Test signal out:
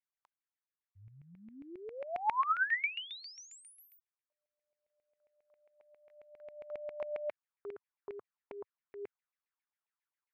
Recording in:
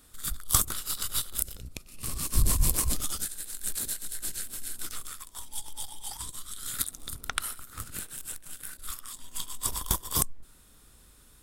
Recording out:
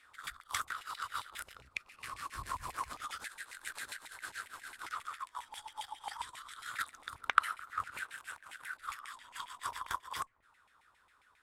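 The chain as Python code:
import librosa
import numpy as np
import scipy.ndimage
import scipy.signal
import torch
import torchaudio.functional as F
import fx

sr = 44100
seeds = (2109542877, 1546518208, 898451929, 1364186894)

y = fx.low_shelf_res(x, sr, hz=130.0, db=6.5, q=1.5)
y = fx.rider(y, sr, range_db=3, speed_s=0.5)
y = fx.filter_lfo_bandpass(y, sr, shape='saw_down', hz=7.4, low_hz=850.0, high_hz=2300.0, q=4.9)
y = F.gain(torch.from_numpy(y), 10.0).numpy()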